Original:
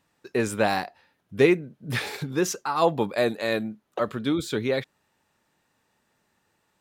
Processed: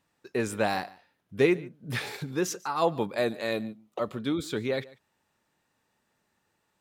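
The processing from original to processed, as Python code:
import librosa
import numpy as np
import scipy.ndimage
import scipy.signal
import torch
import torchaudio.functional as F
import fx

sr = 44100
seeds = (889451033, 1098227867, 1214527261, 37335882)

y = fx.peak_eq(x, sr, hz=1600.0, db=-13.0, octaves=0.23, at=(3.51, 4.18))
y = y + 10.0 ** (-21.5 / 20.0) * np.pad(y, (int(144 * sr / 1000.0), 0))[:len(y)]
y = y * 10.0 ** (-4.0 / 20.0)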